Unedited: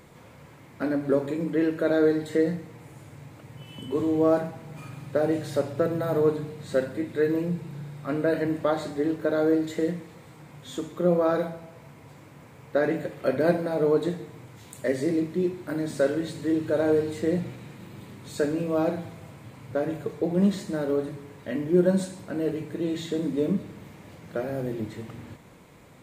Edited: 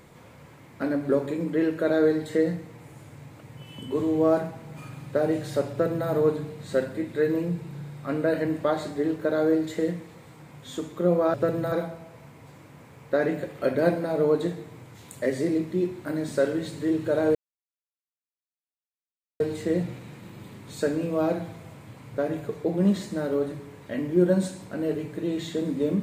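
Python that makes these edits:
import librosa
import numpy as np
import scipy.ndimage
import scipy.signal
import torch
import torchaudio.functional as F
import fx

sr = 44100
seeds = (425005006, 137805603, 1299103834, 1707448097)

y = fx.edit(x, sr, fx.duplicate(start_s=5.71, length_s=0.38, to_s=11.34),
    fx.insert_silence(at_s=16.97, length_s=2.05), tone=tone)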